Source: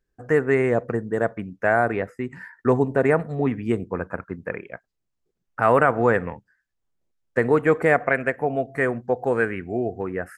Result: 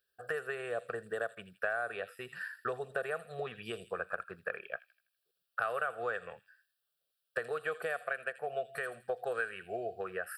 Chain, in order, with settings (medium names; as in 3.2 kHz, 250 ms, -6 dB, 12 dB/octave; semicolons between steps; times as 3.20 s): high-pass 760 Hz 6 dB/octave; treble shelf 2.1 kHz +11 dB; compression 6:1, threshold -30 dBFS, peak gain reduction 16.5 dB; static phaser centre 1.4 kHz, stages 8; feedback echo behind a high-pass 82 ms, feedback 43%, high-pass 4.7 kHz, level -3.5 dB